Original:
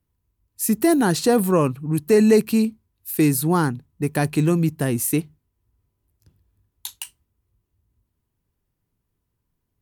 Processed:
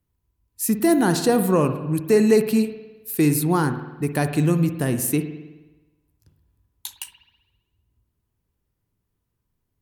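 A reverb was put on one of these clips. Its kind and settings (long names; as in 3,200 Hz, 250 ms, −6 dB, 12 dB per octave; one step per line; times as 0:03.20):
spring reverb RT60 1.1 s, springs 53 ms, chirp 65 ms, DRR 8.5 dB
level −1 dB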